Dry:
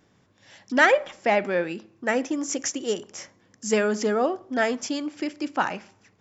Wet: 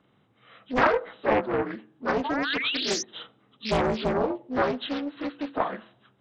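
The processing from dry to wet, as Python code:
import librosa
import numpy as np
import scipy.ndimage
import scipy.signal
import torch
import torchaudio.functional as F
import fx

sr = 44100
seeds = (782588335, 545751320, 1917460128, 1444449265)

y = fx.partial_stretch(x, sr, pct=81)
y = fx.spec_paint(y, sr, seeds[0], shape='rise', start_s=2.24, length_s=0.79, low_hz=830.0, high_hz=6200.0, level_db=-30.0)
y = fx.doppler_dist(y, sr, depth_ms=0.9)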